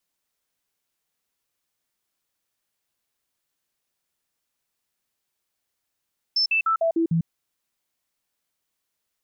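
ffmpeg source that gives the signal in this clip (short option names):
-f lavfi -i "aevalsrc='0.126*clip(min(mod(t,0.15),0.1-mod(t,0.15))/0.005,0,1)*sin(2*PI*5290*pow(2,-floor(t/0.15)/1)*mod(t,0.15))':d=0.9:s=44100"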